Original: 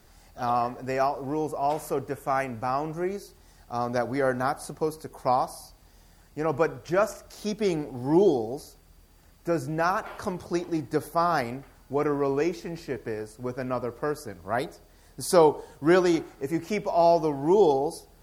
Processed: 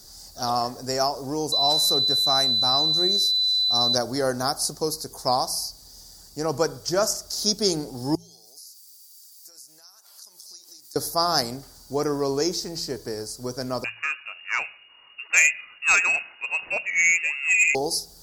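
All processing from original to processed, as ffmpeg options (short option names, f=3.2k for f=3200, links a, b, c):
-filter_complex "[0:a]asettb=1/sr,asplit=3[a][b][c];[a]atrim=end=1.524[d];[b]atrim=start=1.52:end=3.95,asetpts=PTS-STARTPTS,afade=t=in:d=0.004:c=qsin,afade=t=out:st=2.426:d=0.004:c=qsin,equalizer=f=460:t=o:w=0.34:g=-3,aeval=exprs='val(0)+0.0251*sin(2*PI*4000*n/s)':c=same[e];[c]atrim=start=3.946[f];[d][e]acrossfade=d=0.004:c1=hsin:c2=qsin[g];[g][f]acrossfade=d=0.004:c1=qsin:c2=hsin,asettb=1/sr,asplit=3[h][i][j];[h]atrim=end=8.154[k];[i]atrim=start=8.15:end=10.96,asetpts=PTS-STARTPTS,afade=t=in:d=0.004:c=qsin,afade=t=out:st=2.806:d=0.004:c=qsin,aderivative,acompressor=threshold=-56dB:ratio=12:attack=3.2:release=140:knee=1:detection=peak[l];[j]atrim=start=10.956[m];[k][l]acrossfade=d=0.004:c1=hsin:c2=qsin[n];[n][m]acrossfade=d=0.004:c1=qsin:c2=hsin,asettb=1/sr,asplit=3[o][p][q];[o]atrim=end=13.844[r];[p]atrim=start=13.84:end=17.75,asetpts=PTS-STARTPTS,afade=t=in:d=0.004:c=qsin,afade=t=out:st=3.906:d=0.004:c=qsin,lowpass=f=2.5k:t=q:w=0.5098,lowpass=f=2.5k:t=q:w=0.6013,lowpass=f=2.5k:t=q:w=0.9,lowpass=f=2.5k:t=q:w=2.563,afreqshift=-2900,acontrast=41[s];[q]atrim=start=17.746[t];[r][s]acrossfade=d=0.004:c1=hsin:c2=qsin[u];[u][t]acrossfade=d=0.004:c1=qsin:c2=hsin,highshelf=f=3.5k:t=q:w=3:g=12,bandreject=f=56.41:t=h:w=4,bandreject=f=112.82:t=h:w=4,bandreject=f=169.23:t=h:w=4,volume=1dB"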